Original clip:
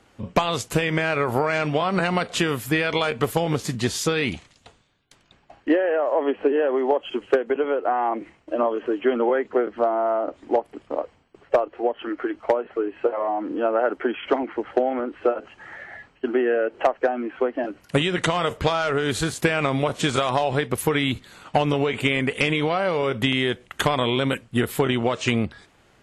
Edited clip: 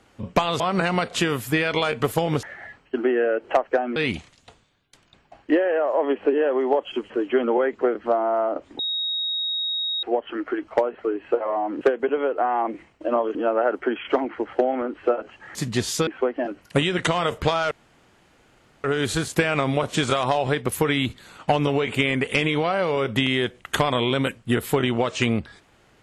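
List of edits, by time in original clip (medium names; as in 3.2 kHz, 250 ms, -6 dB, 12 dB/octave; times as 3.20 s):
0.60–1.79 s: delete
3.62–4.14 s: swap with 15.73–17.26 s
7.28–8.82 s: move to 13.53 s
10.51–11.75 s: bleep 3.77 kHz -23 dBFS
18.90 s: insert room tone 1.13 s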